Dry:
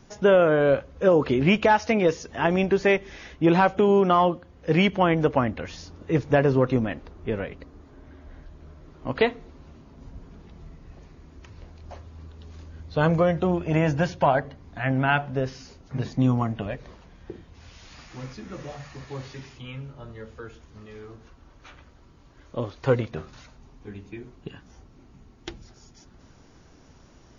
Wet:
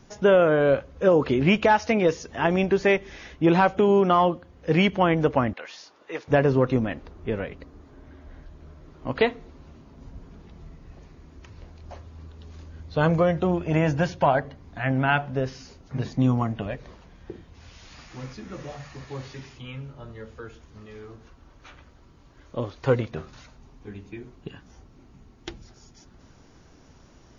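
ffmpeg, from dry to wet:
-filter_complex "[0:a]asettb=1/sr,asplit=3[s0][s1][s2];[s0]atrim=end=5.534[s3];[s1]atrim=start=5.53:end=6.28,asetpts=PTS-STARTPTS,afade=t=in:d=0.004:c=qsin,afade=t=out:st=0.746:d=0.004:c=qsin,highpass=680,lowpass=6000[s4];[s2]atrim=start=6.276[s5];[s3][s4]acrossfade=d=0.004:c1=hsin:c2=qsin[s6];[s6][s5]acrossfade=d=0.004:c1=qsin:c2=hsin"

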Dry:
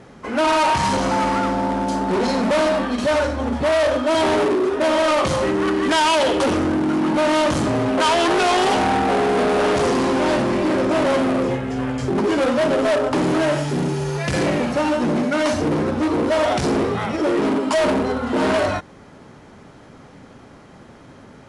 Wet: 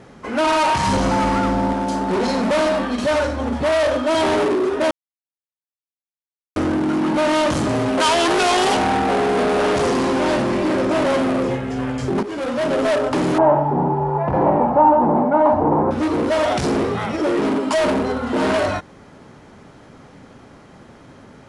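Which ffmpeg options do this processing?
-filter_complex "[0:a]asettb=1/sr,asplit=3[s0][s1][s2];[s0]atrim=end=0.874[s3];[s1]atrim=start=0.87:end=1.73,asetpts=PTS-STARTPTS,afade=t=in:d=0.004:c=qsin,afade=t=out:st=0.856:d=0.004:c=qsin,lowshelf=f=160:g=9[s4];[s2]atrim=start=1.726[s5];[s3][s4]acrossfade=d=0.004:c1=hsin:c2=qsin[s6];[s6][s5]acrossfade=d=0.004:c1=qsin:c2=hsin,asettb=1/sr,asplit=3[s7][s8][s9];[s7]atrim=end=7.694[s10];[s8]atrim=start=7.69:end=8.77,asetpts=PTS-STARTPTS,afade=t=in:d=0.004:c=qsin,afade=t=out:st=1.076:d=0.004:c=qsin,highshelf=f=4200:g=5[s11];[s9]atrim=start=8.766[s12];[s10][s11]acrossfade=d=0.004:c1=hsin:c2=qsin[s13];[s13][s12]acrossfade=d=0.004:c1=qsin:c2=hsin,asettb=1/sr,asplit=3[s14][s15][s16];[s14]atrim=end=13.384[s17];[s15]atrim=start=13.38:end=15.91,asetpts=PTS-STARTPTS,afade=t=in:d=0.004:c=qsin,afade=t=out:st=2.526:d=0.004:c=qsin,lowpass=f=880:t=q:w=5.6[s18];[s16]atrim=start=15.906[s19];[s17][s18]acrossfade=d=0.004:c1=hsin:c2=qsin[s20];[s20][s19]acrossfade=d=0.004:c1=qsin:c2=hsin,asplit=4[s21][s22][s23][s24];[s21]atrim=end=4.91,asetpts=PTS-STARTPTS,afade=t=out:st=4.906:d=0.004:c=hsin[s25];[s22]atrim=start=4.91:end=6.56,asetpts=PTS-STARTPTS,volume=0[s26];[s23]atrim=start=6.56:end=12.23,asetpts=PTS-STARTPTS,afade=t=in:d=0.004:c=hsin,afade=t=out:st=5.666:d=0.004:c=hsin:silence=0.237137[s27];[s24]atrim=start=12.23,asetpts=PTS-STARTPTS,afade=t=in:d=0.58:silence=0.237137[s28];[s25][s26][s27][s28]concat=n=4:v=0:a=1"

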